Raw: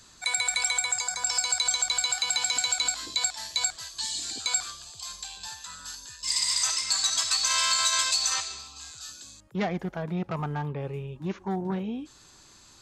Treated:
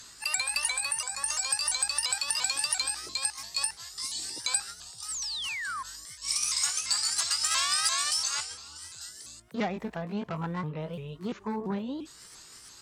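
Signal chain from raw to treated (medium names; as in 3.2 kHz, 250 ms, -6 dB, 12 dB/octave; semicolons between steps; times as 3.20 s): sawtooth pitch modulation +4 st, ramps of 343 ms; painted sound fall, 5.08–5.83 s, 1–8.8 kHz -33 dBFS; Chebyshev shaper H 3 -24 dB, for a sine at -12 dBFS; tape noise reduction on one side only encoder only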